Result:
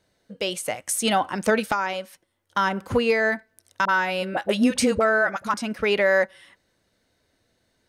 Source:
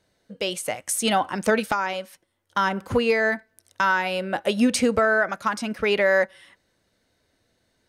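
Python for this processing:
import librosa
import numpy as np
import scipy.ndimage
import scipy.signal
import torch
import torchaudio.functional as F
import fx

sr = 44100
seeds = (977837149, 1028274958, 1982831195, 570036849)

y = fx.dispersion(x, sr, late='highs', ms=41.0, hz=640.0, at=(3.85, 5.54))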